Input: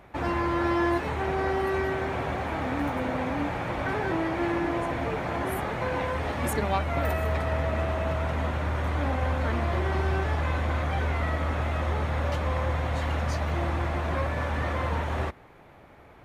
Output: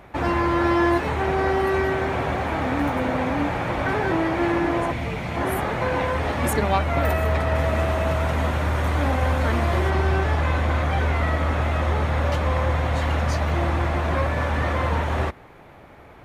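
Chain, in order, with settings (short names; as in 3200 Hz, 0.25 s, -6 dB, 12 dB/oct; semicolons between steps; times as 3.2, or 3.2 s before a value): 4.92–5.37 spectral gain 240–1900 Hz -7 dB; 7.55–9.9 high shelf 6800 Hz +9 dB; gain +5.5 dB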